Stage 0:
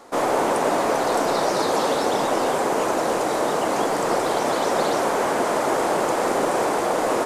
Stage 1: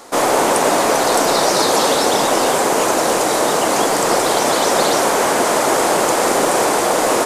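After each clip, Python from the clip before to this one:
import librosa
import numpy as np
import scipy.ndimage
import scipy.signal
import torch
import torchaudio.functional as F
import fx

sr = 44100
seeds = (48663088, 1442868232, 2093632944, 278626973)

y = fx.high_shelf(x, sr, hz=2900.0, db=9.5)
y = y * librosa.db_to_amplitude(5.0)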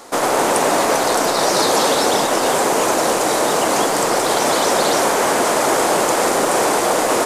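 y = fx.transformer_sat(x, sr, knee_hz=840.0)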